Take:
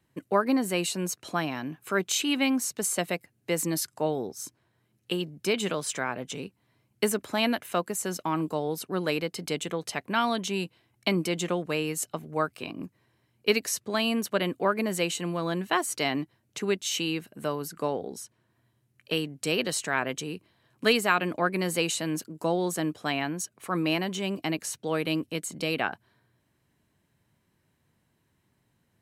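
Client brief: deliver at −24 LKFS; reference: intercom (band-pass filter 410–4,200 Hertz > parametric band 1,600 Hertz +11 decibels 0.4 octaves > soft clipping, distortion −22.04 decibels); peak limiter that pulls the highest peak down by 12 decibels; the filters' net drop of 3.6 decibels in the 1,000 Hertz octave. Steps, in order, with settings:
parametric band 1,000 Hz −7.5 dB
brickwall limiter −20.5 dBFS
band-pass filter 410–4,200 Hz
parametric band 1,600 Hz +11 dB 0.4 octaves
soft clipping −20 dBFS
level +11 dB

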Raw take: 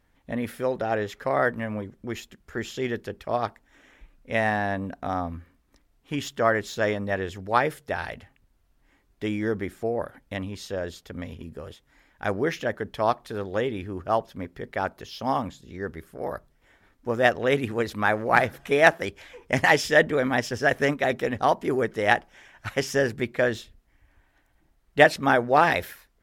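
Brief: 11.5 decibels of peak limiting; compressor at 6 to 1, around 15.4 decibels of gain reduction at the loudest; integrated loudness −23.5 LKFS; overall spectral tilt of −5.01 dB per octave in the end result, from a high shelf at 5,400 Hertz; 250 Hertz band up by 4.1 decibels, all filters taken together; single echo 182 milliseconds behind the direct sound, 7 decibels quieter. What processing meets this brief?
parametric band 250 Hz +5 dB
high-shelf EQ 5,400 Hz −4.5 dB
downward compressor 6 to 1, threshold −27 dBFS
brickwall limiter −24 dBFS
single-tap delay 182 ms −7 dB
level +11.5 dB

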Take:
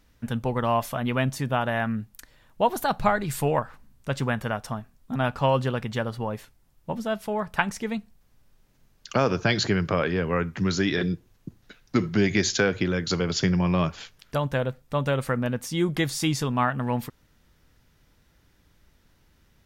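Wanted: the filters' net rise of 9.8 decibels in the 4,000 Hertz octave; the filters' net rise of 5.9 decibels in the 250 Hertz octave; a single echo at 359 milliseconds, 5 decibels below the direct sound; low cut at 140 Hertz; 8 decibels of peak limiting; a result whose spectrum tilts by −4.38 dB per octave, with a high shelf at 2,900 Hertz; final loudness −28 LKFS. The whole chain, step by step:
high-pass filter 140 Hz
parametric band 250 Hz +8.5 dB
high-shelf EQ 2,900 Hz +7 dB
parametric band 4,000 Hz +6.5 dB
brickwall limiter −9 dBFS
single-tap delay 359 ms −5 dB
level −6 dB

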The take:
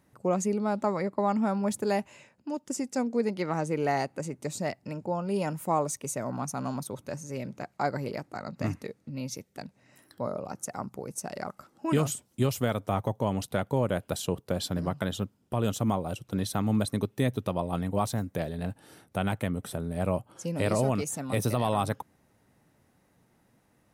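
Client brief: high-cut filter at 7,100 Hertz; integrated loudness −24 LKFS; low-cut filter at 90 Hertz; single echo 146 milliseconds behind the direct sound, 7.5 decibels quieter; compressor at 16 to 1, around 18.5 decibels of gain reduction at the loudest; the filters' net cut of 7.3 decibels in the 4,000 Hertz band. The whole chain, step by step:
high-pass filter 90 Hz
low-pass filter 7,100 Hz
parametric band 4,000 Hz −9 dB
downward compressor 16 to 1, threshold −40 dBFS
single-tap delay 146 ms −7.5 dB
level +21.5 dB

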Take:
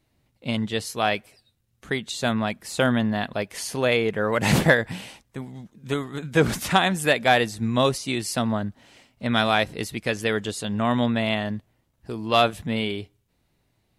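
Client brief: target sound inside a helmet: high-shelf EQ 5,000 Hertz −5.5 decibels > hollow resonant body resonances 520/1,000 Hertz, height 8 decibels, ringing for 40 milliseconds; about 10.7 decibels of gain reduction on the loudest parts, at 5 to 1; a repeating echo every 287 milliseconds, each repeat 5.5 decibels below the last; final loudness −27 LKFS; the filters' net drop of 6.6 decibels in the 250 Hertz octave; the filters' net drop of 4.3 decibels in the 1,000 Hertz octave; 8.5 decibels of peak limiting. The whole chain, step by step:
parametric band 250 Hz −8 dB
parametric band 1,000 Hz −5.5 dB
downward compressor 5 to 1, threshold −28 dBFS
brickwall limiter −24.5 dBFS
high-shelf EQ 5,000 Hz −5.5 dB
repeating echo 287 ms, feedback 53%, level −5.5 dB
hollow resonant body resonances 520/1,000 Hz, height 8 dB, ringing for 40 ms
level +7.5 dB

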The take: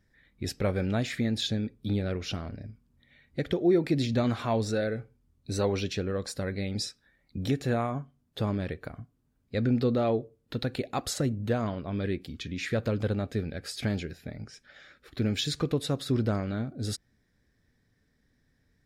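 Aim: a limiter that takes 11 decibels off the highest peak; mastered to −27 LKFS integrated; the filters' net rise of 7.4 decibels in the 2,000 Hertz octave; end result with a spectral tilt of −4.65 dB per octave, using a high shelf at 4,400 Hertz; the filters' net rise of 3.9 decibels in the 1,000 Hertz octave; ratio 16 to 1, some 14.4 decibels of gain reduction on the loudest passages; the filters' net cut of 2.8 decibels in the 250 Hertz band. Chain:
parametric band 250 Hz −4 dB
parametric band 1,000 Hz +3.5 dB
parametric band 2,000 Hz +7.5 dB
high-shelf EQ 4,400 Hz +4.5 dB
downward compressor 16 to 1, threshold −35 dBFS
level +15.5 dB
brickwall limiter −16 dBFS

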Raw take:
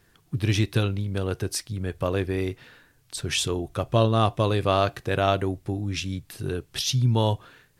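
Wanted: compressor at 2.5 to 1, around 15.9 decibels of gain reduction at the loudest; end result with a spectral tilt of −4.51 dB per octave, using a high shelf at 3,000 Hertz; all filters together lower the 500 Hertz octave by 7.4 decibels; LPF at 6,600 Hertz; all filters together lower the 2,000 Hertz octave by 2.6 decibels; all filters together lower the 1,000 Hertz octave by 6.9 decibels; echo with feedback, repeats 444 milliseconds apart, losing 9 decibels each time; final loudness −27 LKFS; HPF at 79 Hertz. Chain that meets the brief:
high-pass filter 79 Hz
low-pass filter 6,600 Hz
parametric band 500 Hz −8 dB
parametric band 1,000 Hz −6 dB
parametric band 2,000 Hz −4 dB
high-shelf EQ 3,000 Hz +5 dB
downward compressor 2.5 to 1, threshold −44 dBFS
repeating echo 444 ms, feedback 35%, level −9 dB
level +14.5 dB

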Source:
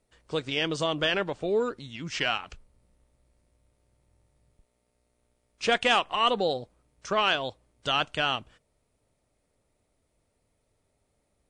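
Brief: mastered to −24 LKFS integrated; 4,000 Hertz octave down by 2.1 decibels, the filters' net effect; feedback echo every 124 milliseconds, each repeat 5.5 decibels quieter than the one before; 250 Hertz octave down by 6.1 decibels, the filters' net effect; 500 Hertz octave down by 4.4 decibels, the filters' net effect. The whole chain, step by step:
parametric band 250 Hz −7.5 dB
parametric band 500 Hz −3.5 dB
parametric band 4,000 Hz −3 dB
repeating echo 124 ms, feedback 53%, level −5.5 dB
level +4.5 dB

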